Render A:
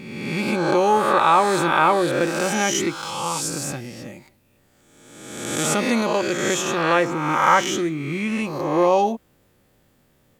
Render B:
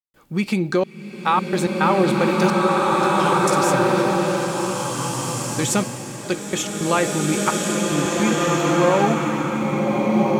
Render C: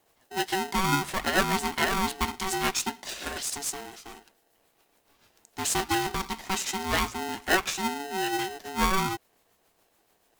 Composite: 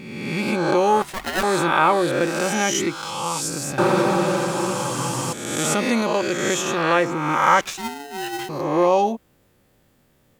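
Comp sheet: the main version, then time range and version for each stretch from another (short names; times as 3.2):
A
1.02–1.43 from C
3.78–5.33 from B
7.61–8.49 from C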